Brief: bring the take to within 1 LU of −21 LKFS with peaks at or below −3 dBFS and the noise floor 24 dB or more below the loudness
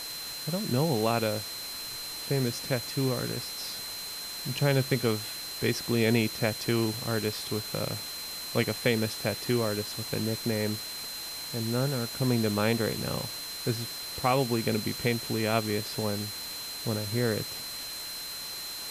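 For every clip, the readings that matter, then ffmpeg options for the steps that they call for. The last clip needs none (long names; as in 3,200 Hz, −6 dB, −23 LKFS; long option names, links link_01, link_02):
interfering tone 4,100 Hz; level of the tone −38 dBFS; background noise floor −38 dBFS; target noise floor −54 dBFS; integrated loudness −30.0 LKFS; sample peak −12.5 dBFS; target loudness −21.0 LKFS
→ -af "bandreject=frequency=4100:width=30"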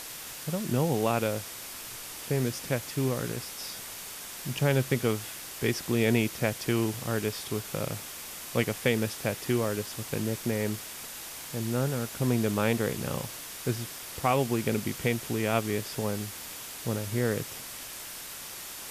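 interfering tone none found; background noise floor −42 dBFS; target noise floor −55 dBFS
→ -af "afftdn=noise_reduction=13:noise_floor=-42"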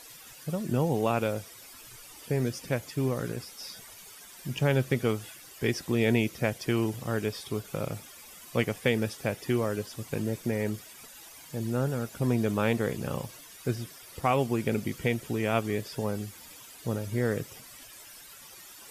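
background noise floor −49 dBFS; target noise floor −55 dBFS
→ -af "afftdn=noise_reduction=6:noise_floor=-49"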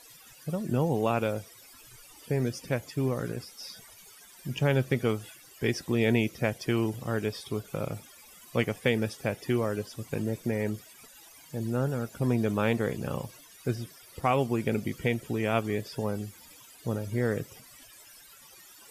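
background noise floor −53 dBFS; target noise floor −55 dBFS
→ -af "afftdn=noise_reduction=6:noise_floor=-53"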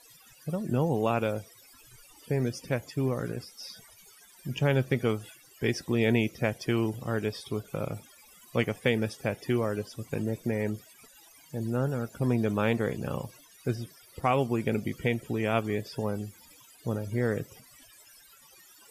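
background noise floor −56 dBFS; integrated loudness −30.5 LKFS; sample peak −13.0 dBFS; target loudness −21.0 LKFS
→ -af "volume=9.5dB"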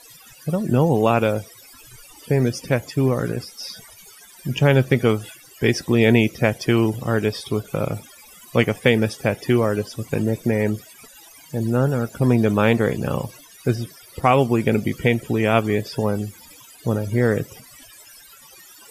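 integrated loudness −21.0 LKFS; sample peak −3.5 dBFS; background noise floor −47 dBFS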